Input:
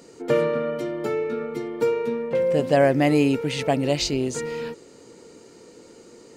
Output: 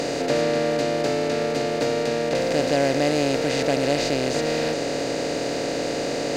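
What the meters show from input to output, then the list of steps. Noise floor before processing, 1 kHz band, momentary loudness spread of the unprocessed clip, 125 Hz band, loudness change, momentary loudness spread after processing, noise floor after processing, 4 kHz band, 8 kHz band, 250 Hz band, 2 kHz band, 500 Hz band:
−49 dBFS, +2.5 dB, 11 LU, −1.5 dB, 0.0 dB, 5 LU, −27 dBFS, +5.0 dB, +5.0 dB, 0.0 dB, +4.0 dB, +1.0 dB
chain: compressor on every frequency bin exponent 0.2
level −7.5 dB

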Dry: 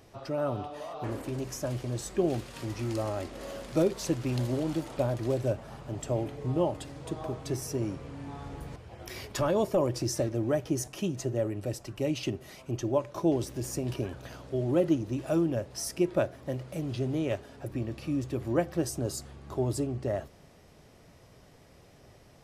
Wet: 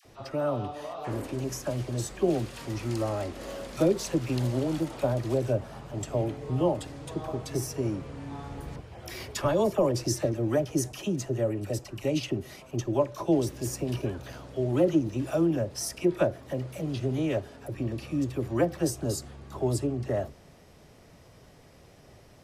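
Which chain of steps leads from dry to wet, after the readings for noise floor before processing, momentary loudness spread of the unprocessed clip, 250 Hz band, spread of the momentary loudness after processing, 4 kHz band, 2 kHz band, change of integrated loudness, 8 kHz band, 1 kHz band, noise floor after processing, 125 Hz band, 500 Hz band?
−56 dBFS, 11 LU, +2.0 dB, 11 LU, +2.0 dB, +2.0 dB, +2.0 dB, +2.0 dB, +2.0 dB, −54 dBFS, +2.0 dB, +2.0 dB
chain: all-pass dispersion lows, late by 53 ms, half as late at 910 Hz
level +2 dB

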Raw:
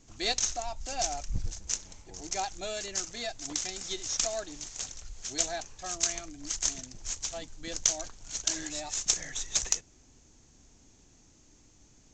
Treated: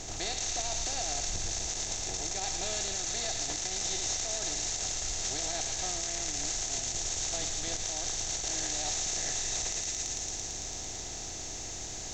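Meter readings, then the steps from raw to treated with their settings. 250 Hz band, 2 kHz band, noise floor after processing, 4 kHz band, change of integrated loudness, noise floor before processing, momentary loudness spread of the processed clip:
−0.5 dB, +1.0 dB, −40 dBFS, +1.5 dB, +0.5 dB, −60 dBFS, 6 LU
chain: compressor on every frequency bin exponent 0.4
feedback echo with a high-pass in the loop 112 ms, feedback 85%, high-pass 1,100 Hz, level −6 dB
brickwall limiter −16 dBFS, peak gain reduction 11 dB
level −6.5 dB

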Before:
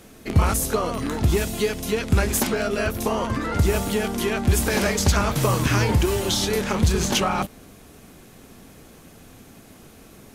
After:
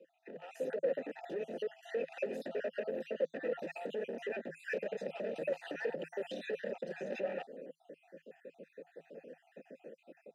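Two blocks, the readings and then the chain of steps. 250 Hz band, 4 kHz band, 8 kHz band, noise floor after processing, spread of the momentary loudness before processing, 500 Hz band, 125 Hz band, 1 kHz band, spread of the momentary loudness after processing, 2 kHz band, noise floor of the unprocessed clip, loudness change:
−22.0 dB, −26.5 dB, below −35 dB, −73 dBFS, 5 LU, −11.0 dB, −36.0 dB, −23.5 dB, 18 LU, −16.5 dB, −48 dBFS, −17.5 dB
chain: time-frequency cells dropped at random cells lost 54%
Chebyshev high-pass filter 160 Hz, order 6
tilt shelving filter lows +8.5 dB, about 890 Hz
downward compressor 6 to 1, threshold −23 dBFS, peak gain reduction 10.5 dB
brickwall limiter −20.5 dBFS, peak gain reduction 7 dB
hard clipping −30 dBFS, distortion −9 dB
formant filter e
notch comb filter 1,100 Hz
automatic gain control gain up to 10 dB
level −1.5 dB

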